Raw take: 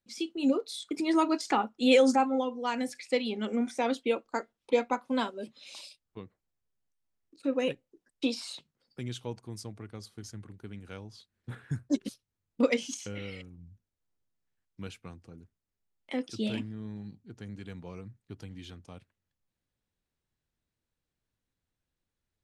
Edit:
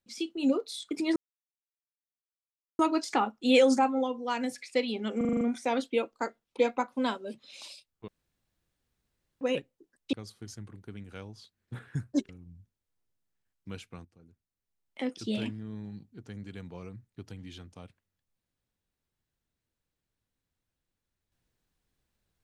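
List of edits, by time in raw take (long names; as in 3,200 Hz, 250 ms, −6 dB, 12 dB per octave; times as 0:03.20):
0:01.16: splice in silence 1.63 s
0:03.54: stutter 0.04 s, 7 plays
0:06.21–0:07.54: fill with room tone
0:08.26–0:09.89: remove
0:12.05–0:13.41: remove
0:15.17–0:16.14: fade in, from −13 dB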